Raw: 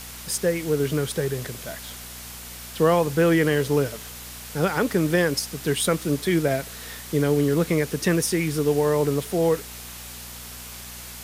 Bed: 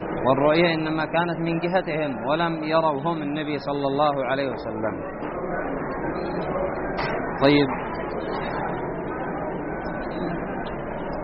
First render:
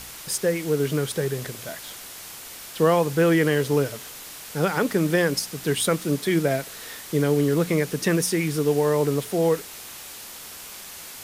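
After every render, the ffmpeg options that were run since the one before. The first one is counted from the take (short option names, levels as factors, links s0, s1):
-af "bandreject=f=60:t=h:w=4,bandreject=f=120:t=h:w=4,bandreject=f=180:t=h:w=4,bandreject=f=240:t=h:w=4"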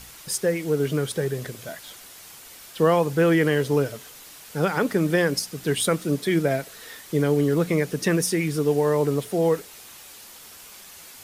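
-af "afftdn=nr=6:nf=-40"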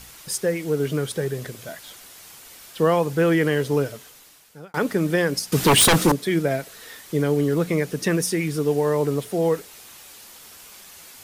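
-filter_complex "[0:a]asettb=1/sr,asplit=3[s0][s1][s2];[s0]atrim=end=5.524[s3];[s1]atrim=start=5.52:end=6.12,asetpts=PTS-STARTPTS,afade=t=in:d=0.004:c=qsin,afade=t=out:st=0.596:d=0.004:c=qsin,aeval=exprs='0.282*sin(PI/2*3.55*val(0)/0.282)':c=same[s4];[s2]atrim=start=6.116[s5];[s3][s4]acrossfade=d=0.004:c1=hsin:c2=qsin[s6];[s6][s5]acrossfade=d=0.004:c1=qsin:c2=hsin,asplit=2[s7][s8];[s7]atrim=end=4.74,asetpts=PTS-STARTPTS,afade=t=out:st=3.84:d=0.9[s9];[s8]atrim=start=4.74,asetpts=PTS-STARTPTS,afade=t=in:d=0.004:c=hsin[s10];[s9][s10]concat=n=2:v=0:a=1"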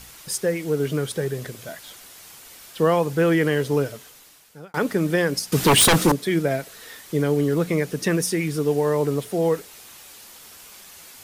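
-af anull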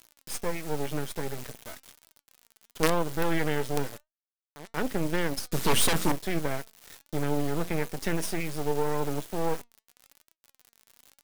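-af "acrusher=bits=3:dc=4:mix=0:aa=0.000001,flanger=delay=3:depth=1.6:regen=87:speed=0.97:shape=triangular"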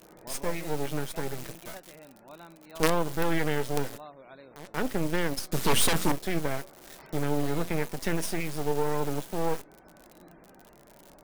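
-filter_complex "[1:a]volume=0.0531[s0];[0:a][s0]amix=inputs=2:normalize=0"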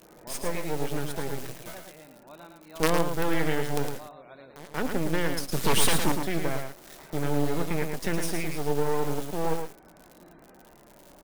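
-af "aecho=1:1:110:0.501"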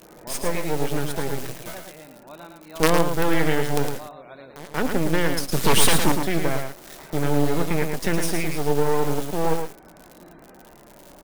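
-af "volume=1.88"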